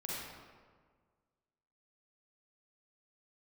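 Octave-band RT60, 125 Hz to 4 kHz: 1.9, 1.8, 1.7, 1.6, 1.3, 0.95 seconds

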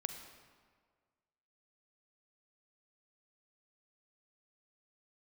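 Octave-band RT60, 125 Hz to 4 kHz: 1.7, 1.7, 1.8, 1.7, 1.4, 1.1 seconds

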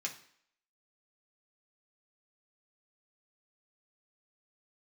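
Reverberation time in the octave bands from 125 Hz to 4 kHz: 0.45, 0.55, 0.60, 0.65, 0.65, 0.60 seconds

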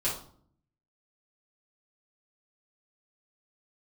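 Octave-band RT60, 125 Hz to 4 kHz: 0.95, 0.85, 0.60, 0.55, 0.35, 0.40 seconds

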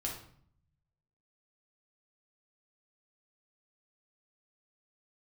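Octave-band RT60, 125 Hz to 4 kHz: 1.4, 0.85, 0.60, 0.60, 0.50, 0.45 seconds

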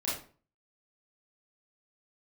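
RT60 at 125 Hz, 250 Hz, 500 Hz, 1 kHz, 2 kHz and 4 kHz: 0.55, 0.45, 0.45, 0.40, 0.35, 0.30 seconds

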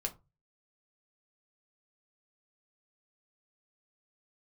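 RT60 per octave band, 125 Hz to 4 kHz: 0.50, 0.30, 0.25, 0.25, 0.20, 0.15 seconds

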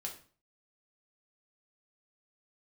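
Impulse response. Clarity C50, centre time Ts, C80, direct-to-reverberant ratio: 9.0 dB, 18 ms, 14.0 dB, −0.5 dB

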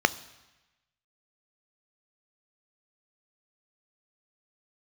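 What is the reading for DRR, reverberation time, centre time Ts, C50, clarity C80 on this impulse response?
14.5 dB, 1.1 s, 3 ms, 19.5 dB, 21.0 dB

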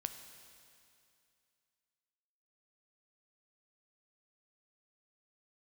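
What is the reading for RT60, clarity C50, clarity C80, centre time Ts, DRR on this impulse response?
2.5 s, 8.5 dB, 9.5 dB, 30 ms, 7.0 dB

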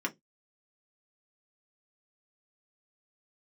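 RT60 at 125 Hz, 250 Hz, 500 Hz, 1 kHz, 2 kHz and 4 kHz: 0.25, 0.20, 0.20, 0.10, 0.10, 0.15 seconds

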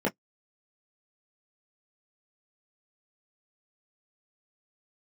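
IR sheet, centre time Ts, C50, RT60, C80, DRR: 15 ms, 34.0 dB, 0.05 s, 56.5 dB, −4.5 dB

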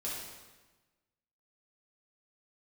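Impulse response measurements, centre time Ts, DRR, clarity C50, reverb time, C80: 77 ms, −7.0 dB, 0.0 dB, 1.2 s, 3.0 dB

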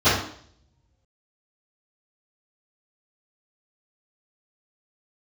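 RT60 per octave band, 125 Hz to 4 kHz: 1.3, 0.65, 0.60, 0.55, 0.55, 0.60 seconds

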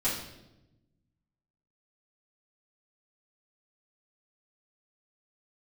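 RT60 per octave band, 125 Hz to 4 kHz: 1.8, 1.5, 1.1, 0.80, 0.75, 0.75 seconds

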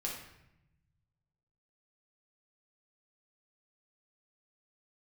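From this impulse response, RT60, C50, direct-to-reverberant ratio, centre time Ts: 0.85 s, 3.0 dB, −3.0 dB, 43 ms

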